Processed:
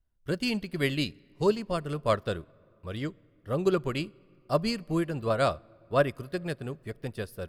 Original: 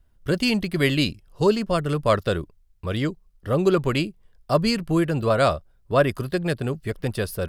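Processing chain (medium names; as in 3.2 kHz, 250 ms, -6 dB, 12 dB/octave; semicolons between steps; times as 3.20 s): on a send at -20 dB: reverberation RT60 3.1 s, pre-delay 4 ms; on the sum: upward expansion 1.5:1, over -36 dBFS; trim -4.5 dB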